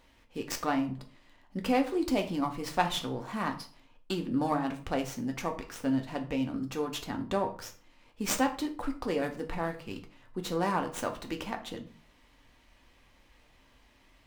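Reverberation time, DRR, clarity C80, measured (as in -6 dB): 0.40 s, 4.0 dB, 16.5 dB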